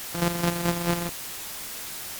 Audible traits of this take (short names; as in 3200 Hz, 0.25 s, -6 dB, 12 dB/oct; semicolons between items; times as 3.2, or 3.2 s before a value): a buzz of ramps at a fixed pitch in blocks of 256 samples; chopped level 4.6 Hz, depth 60%, duty 30%; a quantiser's noise floor 6-bit, dither triangular; AC-3